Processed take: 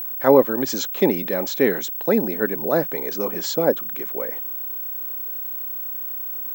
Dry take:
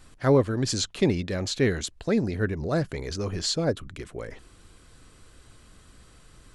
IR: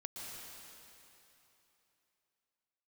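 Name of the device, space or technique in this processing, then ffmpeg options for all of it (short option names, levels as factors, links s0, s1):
old television with a line whistle: -af "highpass=f=200:w=0.5412,highpass=f=200:w=1.3066,equalizer=f=530:t=q:w=4:g=5,equalizer=f=870:t=q:w=4:g=8,equalizer=f=2800:t=q:w=4:g=-4,equalizer=f=4500:t=q:w=4:g=-9,lowpass=f=6800:w=0.5412,lowpass=f=6800:w=1.3066,aeval=exprs='val(0)+0.0282*sin(2*PI*15734*n/s)':c=same,volume=1.68"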